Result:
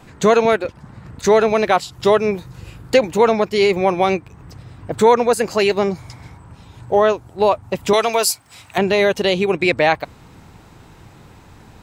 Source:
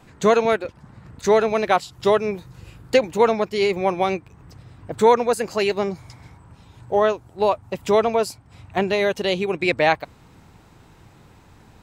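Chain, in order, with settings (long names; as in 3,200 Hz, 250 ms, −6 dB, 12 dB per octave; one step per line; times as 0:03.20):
0:07.93–0:08.78: spectral tilt +4 dB per octave
in parallel at +2.5 dB: brickwall limiter −12.5 dBFS, peak gain reduction 9.5 dB
on the sum: level −1.5 dB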